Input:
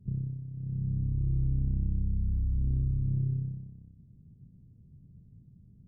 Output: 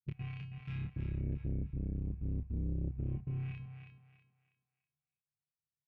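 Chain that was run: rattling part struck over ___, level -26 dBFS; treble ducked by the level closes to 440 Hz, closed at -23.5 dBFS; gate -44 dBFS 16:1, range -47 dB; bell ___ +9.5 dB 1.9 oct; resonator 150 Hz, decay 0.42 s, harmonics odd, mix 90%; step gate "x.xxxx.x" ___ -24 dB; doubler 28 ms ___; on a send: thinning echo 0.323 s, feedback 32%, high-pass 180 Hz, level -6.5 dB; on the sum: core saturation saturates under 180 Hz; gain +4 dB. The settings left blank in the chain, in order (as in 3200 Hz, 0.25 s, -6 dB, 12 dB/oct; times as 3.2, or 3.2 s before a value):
-34 dBFS, 76 Hz, 156 bpm, -5 dB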